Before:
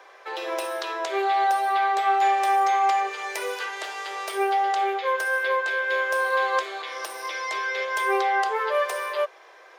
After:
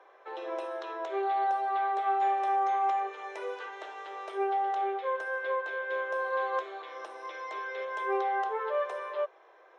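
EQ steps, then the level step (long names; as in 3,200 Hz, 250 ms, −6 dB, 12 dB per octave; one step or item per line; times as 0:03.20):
head-to-tape spacing loss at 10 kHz 26 dB
parametric band 2,200 Hz −4.5 dB 1.1 octaves
notch filter 4,700 Hz, Q 5.7
−4.0 dB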